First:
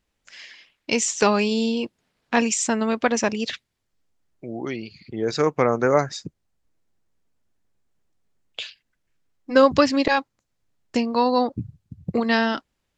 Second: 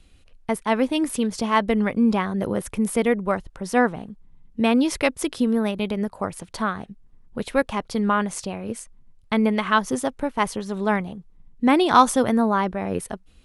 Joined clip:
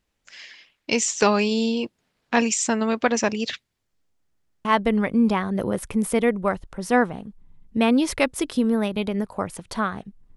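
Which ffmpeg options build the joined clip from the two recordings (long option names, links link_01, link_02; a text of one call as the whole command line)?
ffmpeg -i cue0.wav -i cue1.wav -filter_complex "[0:a]apad=whole_dur=10.36,atrim=end=10.36,asplit=3[link_01][link_02][link_03];[link_01]atrim=end=4.352[link_04];[link_02]atrim=start=4.198:end=4.352[link_05];[link_03]atrim=start=4.198:end=4.352[link_06];[1:a]atrim=start=1.478:end=7.19[link_07];[link_04][link_05]acrossfade=duration=0.004:curve1=hsin:curve2=hsin[link_08];[link_08][link_06]acrossfade=duration=0.004:curve1=hsin:curve2=hsin[link_09];[link_09][link_07]acrossfade=duration=0.004:curve1=hsin:curve2=hsin" out.wav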